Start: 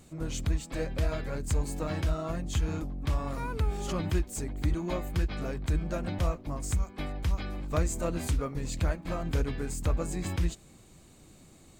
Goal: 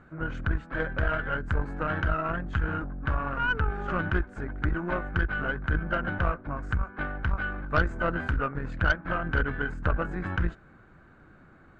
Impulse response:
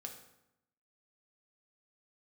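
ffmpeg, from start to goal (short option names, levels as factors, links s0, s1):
-af "lowpass=f=1500:t=q:w=10,aeval=exprs='0.266*(cos(1*acos(clip(val(0)/0.266,-1,1)))-cos(1*PI/2))+0.0376*(cos(4*acos(clip(val(0)/0.266,-1,1)))-cos(4*PI/2))':c=same"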